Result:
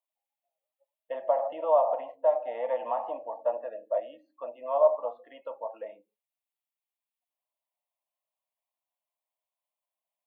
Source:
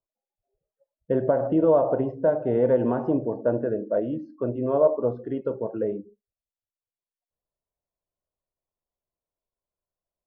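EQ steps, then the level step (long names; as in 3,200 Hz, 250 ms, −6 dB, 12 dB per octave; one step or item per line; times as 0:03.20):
high-pass filter 560 Hz 24 dB per octave
phaser with its sweep stopped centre 1,500 Hz, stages 6
+3.5 dB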